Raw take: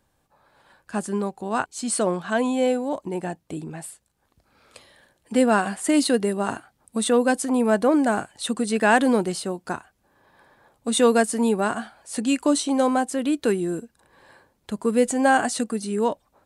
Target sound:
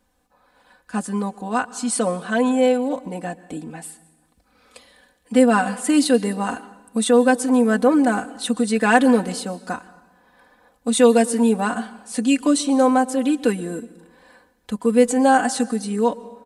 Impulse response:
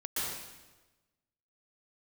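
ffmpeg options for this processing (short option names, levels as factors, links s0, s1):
-filter_complex "[0:a]aecho=1:1:4:0.87,asplit=2[s0][s1];[1:a]atrim=start_sample=2205[s2];[s1][s2]afir=irnorm=-1:irlink=0,volume=0.0708[s3];[s0][s3]amix=inputs=2:normalize=0,volume=0.891"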